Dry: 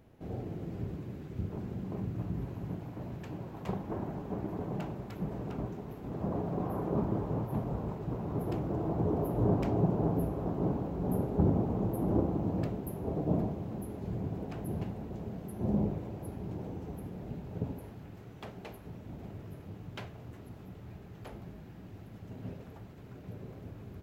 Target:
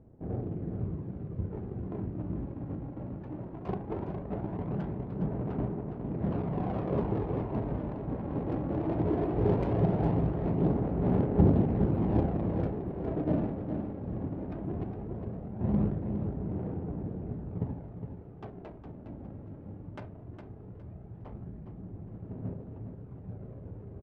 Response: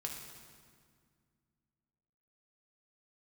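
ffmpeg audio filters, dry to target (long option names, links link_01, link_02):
-af "adynamicsmooth=sensitivity=4.5:basefreq=620,aphaser=in_gain=1:out_gain=1:delay=3.7:decay=0.31:speed=0.18:type=sinusoidal,aecho=1:1:411|822|1233:0.398|0.0916|0.0211,volume=1.5dB"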